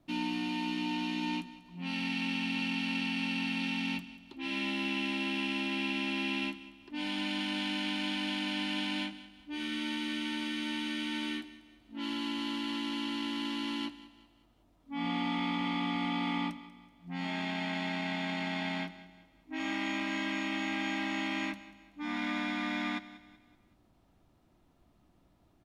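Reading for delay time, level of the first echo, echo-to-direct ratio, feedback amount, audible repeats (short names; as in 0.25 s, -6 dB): 0.189 s, -16.5 dB, -15.5 dB, 41%, 3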